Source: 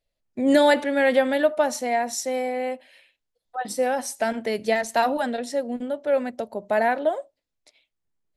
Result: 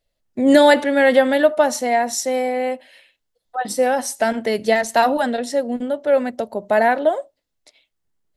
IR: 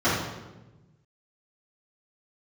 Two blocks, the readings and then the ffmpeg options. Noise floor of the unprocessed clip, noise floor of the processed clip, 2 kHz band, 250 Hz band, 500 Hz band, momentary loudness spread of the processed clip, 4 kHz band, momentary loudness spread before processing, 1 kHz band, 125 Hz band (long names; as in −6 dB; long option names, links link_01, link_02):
−81 dBFS, −75 dBFS, +5.5 dB, +5.5 dB, +5.5 dB, 12 LU, +5.5 dB, 12 LU, +5.5 dB, can't be measured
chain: -af "bandreject=frequency=2400:width=16,volume=5.5dB"